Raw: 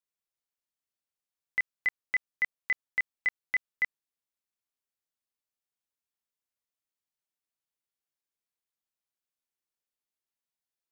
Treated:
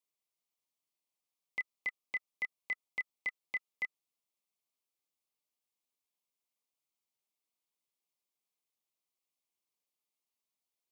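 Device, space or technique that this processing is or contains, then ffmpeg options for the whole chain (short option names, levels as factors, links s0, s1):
PA system with an anti-feedback notch: -af "highpass=160,asuperstop=centerf=1600:order=20:qfactor=2.3,alimiter=level_in=1.88:limit=0.0631:level=0:latency=1,volume=0.531,volume=1.12"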